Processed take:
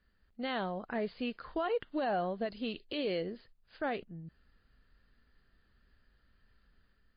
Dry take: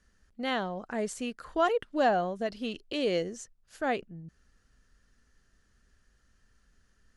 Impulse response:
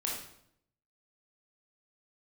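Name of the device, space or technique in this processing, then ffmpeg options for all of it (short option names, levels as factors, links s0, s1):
low-bitrate web radio: -af "dynaudnorm=f=150:g=5:m=1.58,alimiter=limit=0.1:level=0:latency=1:release=119,volume=0.562" -ar 11025 -c:a libmp3lame -b:a 24k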